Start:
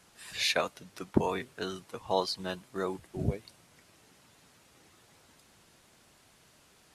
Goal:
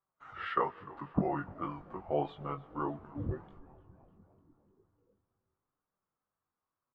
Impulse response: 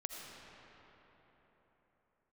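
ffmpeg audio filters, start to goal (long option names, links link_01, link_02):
-filter_complex "[0:a]flanger=delay=3.9:depth=5.6:regen=54:speed=0.84:shape=sinusoidal,asetrate=34006,aresample=44100,atempo=1.29684,agate=range=-26dB:threshold=-59dB:ratio=16:detection=peak,lowpass=frequency=1200:width_type=q:width=2.9,asplit=2[link_01][link_02];[link_02]adelay=21,volume=-6dB[link_03];[link_01][link_03]amix=inputs=2:normalize=0,asplit=7[link_04][link_05][link_06][link_07][link_08][link_09][link_10];[link_05]adelay=300,afreqshift=-97,volume=-20dB[link_11];[link_06]adelay=600,afreqshift=-194,volume=-23.9dB[link_12];[link_07]adelay=900,afreqshift=-291,volume=-27.8dB[link_13];[link_08]adelay=1200,afreqshift=-388,volume=-31.6dB[link_14];[link_09]adelay=1500,afreqshift=-485,volume=-35.5dB[link_15];[link_10]adelay=1800,afreqshift=-582,volume=-39.4dB[link_16];[link_04][link_11][link_12][link_13][link_14][link_15][link_16]amix=inputs=7:normalize=0,asplit=2[link_17][link_18];[1:a]atrim=start_sample=2205[link_19];[link_18][link_19]afir=irnorm=-1:irlink=0,volume=-17dB[link_20];[link_17][link_20]amix=inputs=2:normalize=0,volume=-2dB"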